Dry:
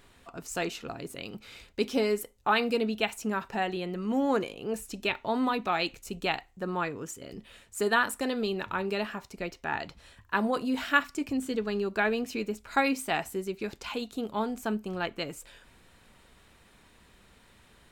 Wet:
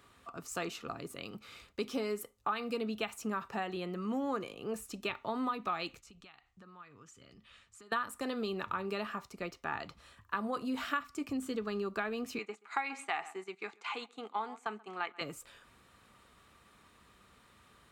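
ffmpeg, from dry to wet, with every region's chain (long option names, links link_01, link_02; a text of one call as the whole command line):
ffmpeg -i in.wav -filter_complex "[0:a]asettb=1/sr,asplit=3[link_01][link_02][link_03];[link_01]atrim=end=6.004[link_04];[link_02]atrim=start=6:end=7.92,asetpts=PTS-STARTPTS,afade=type=in:duration=0.004:curve=qsin,afade=type=out:start_time=1.916:duration=0.004:curve=qsin,lowpass=5700,equalizer=frequency=420:width_type=o:width=2.6:gain=-10.5,acompressor=threshold=-48dB:ratio=10:attack=3.2:release=140:knee=1:detection=peak[link_05];[link_03]atrim=start=7.916[link_06];[link_04][link_05]acrossfade=duration=0.004:curve1=hsin:curve2=qsin[link_07];[link_07][link_06]acrossfade=duration=0.004:curve1=qsin:curve2=hsin,asettb=1/sr,asplit=3[link_08][link_09][link_10];[link_08]atrim=end=12.384[link_11];[link_09]atrim=start=12.38:end=15.21,asetpts=PTS-STARTPTS,afade=type=in:duration=0.004:curve=qsin,afade=type=out:start_time=2.826:duration=0.004:curve=qsin,highpass=430,equalizer=frequency=570:width_type=q:width=4:gain=-10,equalizer=frequency=810:width_type=q:width=4:gain=8,equalizer=frequency=2100:width_type=q:width=4:gain=9,equalizer=frequency=5300:width_type=q:width=4:gain=-9,lowpass=frequency=8200:width=0.5412,lowpass=frequency=8200:width=1.3066,asplit=2[link_12][link_13];[link_13]adelay=132,lowpass=frequency=2300:poles=1,volume=-17.5dB,asplit=2[link_14][link_15];[link_15]adelay=132,lowpass=frequency=2300:poles=1,volume=0.16[link_16];[link_12][link_14][link_16]amix=inputs=3:normalize=0,atrim=end_sample=124803,agate=range=-8dB:threshold=-44dB:ratio=16:release=100:detection=peak[link_17];[link_10]atrim=start=15.206[link_18];[link_11][link_17]acrossfade=duration=0.004:curve1=hsin:curve2=qsin[link_19];[link_19][link_18]acrossfade=duration=0.004:curve1=qsin:curve2=hsin,highpass=55,equalizer=frequency=1200:width_type=o:width=0.21:gain=12,acrossover=split=130[link_20][link_21];[link_21]acompressor=threshold=-27dB:ratio=5[link_22];[link_20][link_22]amix=inputs=2:normalize=0,volume=-4.5dB" out.wav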